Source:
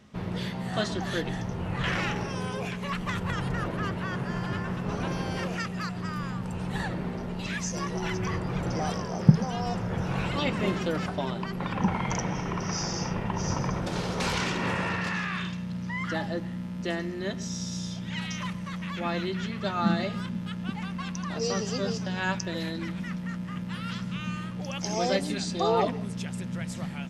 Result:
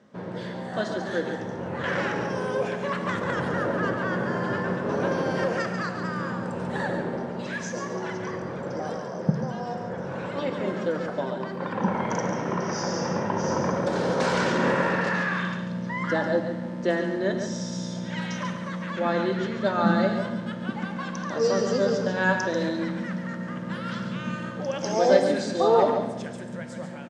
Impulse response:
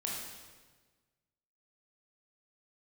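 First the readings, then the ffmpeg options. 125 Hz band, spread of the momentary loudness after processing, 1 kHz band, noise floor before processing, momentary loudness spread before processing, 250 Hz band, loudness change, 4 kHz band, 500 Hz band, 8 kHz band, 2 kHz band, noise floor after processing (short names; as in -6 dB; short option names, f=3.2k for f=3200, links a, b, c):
-2.0 dB, 9 LU, +4.0 dB, -36 dBFS, 7 LU, +2.0 dB, +3.5 dB, -2.0 dB, +8.0 dB, -2.0 dB, +4.0 dB, -35 dBFS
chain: -filter_complex "[0:a]tiltshelf=f=630:g=5,dynaudnorm=f=880:g=5:m=5dB,highpass=230,equalizer=f=540:t=q:w=4:g=9,equalizer=f=970:t=q:w=4:g=4,equalizer=f=1.6k:t=q:w=4:g=8,equalizer=f=2.6k:t=q:w=4:g=-4,lowpass=f=9k:w=0.5412,lowpass=f=9k:w=1.3066,aecho=1:1:141:0.398,asplit=2[a][b];[1:a]atrim=start_sample=2205[c];[b][c]afir=irnorm=-1:irlink=0,volume=-6.5dB[d];[a][d]amix=inputs=2:normalize=0,volume=-4.5dB"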